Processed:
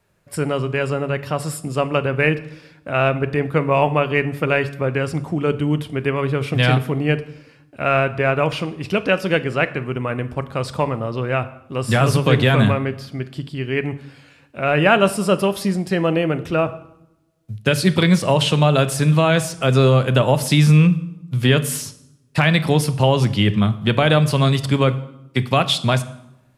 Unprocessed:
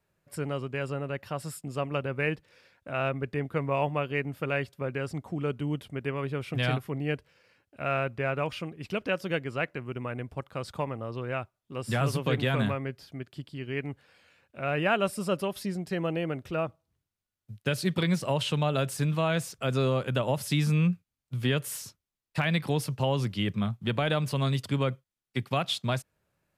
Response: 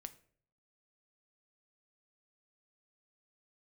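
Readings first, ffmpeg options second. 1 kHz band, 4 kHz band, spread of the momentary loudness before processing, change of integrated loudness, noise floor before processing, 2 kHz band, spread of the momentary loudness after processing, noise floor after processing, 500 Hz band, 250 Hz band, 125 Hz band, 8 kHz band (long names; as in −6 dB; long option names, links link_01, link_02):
+11.5 dB, +11.5 dB, 10 LU, +11.5 dB, below −85 dBFS, +11.5 dB, 11 LU, −53 dBFS, +11.5 dB, +11.5 dB, +12.0 dB, +11.5 dB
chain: -filter_complex "[0:a]asplit=2[link_01][link_02];[1:a]atrim=start_sample=2205,asetrate=22932,aresample=44100[link_03];[link_02][link_03]afir=irnorm=-1:irlink=0,volume=8dB[link_04];[link_01][link_04]amix=inputs=2:normalize=0,volume=2dB"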